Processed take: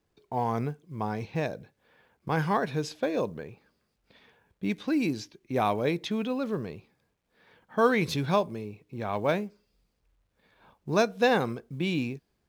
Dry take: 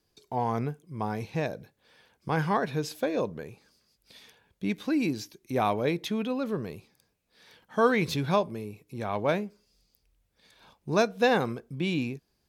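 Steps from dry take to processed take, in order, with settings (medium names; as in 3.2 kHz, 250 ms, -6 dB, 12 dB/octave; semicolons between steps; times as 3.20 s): level-controlled noise filter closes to 1.9 kHz, open at -23.5 dBFS; companded quantiser 8-bit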